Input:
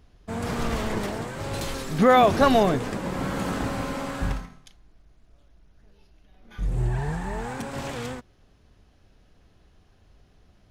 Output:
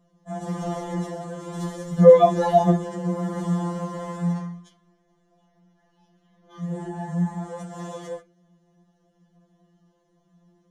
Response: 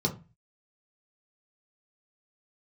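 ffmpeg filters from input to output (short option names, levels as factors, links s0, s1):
-filter_complex "[0:a]asettb=1/sr,asplit=3[s0][s1][s2];[s0]atrim=end=4.354[s3];[s1]atrim=start=4.35:end=6.88,asetpts=PTS-STARTPTS,afade=t=in:d=0.004:c=qsin,afade=t=out:st=2.526:d=0.004:c=qsin,equalizer=f=2000:w=0.43:g=7.5[s4];[s2]atrim=start=6.876[s5];[s3][s4]acrossfade=d=0.004:c1=hsin:c2=qsin[s6];[s6][s5]acrossfade=d=0.004:c1=qsin:c2=hsin[s7];[1:a]atrim=start_sample=2205,asetrate=70560,aresample=44100[s8];[s7][s8]afir=irnorm=-1:irlink=0,afftfilt=real='re*2.83*eq(mod(b,8),0)':imag='im*2.83*eq(mod(b,8),0)':win_size=2048:overlap=0.75,volume=0.398"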